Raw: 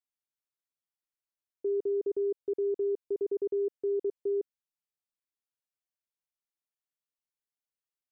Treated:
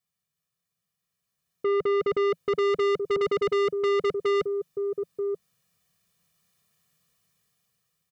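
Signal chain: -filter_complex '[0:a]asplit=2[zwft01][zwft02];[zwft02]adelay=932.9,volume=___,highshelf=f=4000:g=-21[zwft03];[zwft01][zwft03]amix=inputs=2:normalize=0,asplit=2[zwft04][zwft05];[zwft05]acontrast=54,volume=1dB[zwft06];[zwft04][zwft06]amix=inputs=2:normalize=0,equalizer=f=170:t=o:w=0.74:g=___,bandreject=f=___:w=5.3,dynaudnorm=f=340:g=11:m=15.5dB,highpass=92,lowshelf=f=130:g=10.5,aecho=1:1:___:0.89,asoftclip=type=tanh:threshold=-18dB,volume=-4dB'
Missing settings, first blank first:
-17dB, 13, 590, 1.7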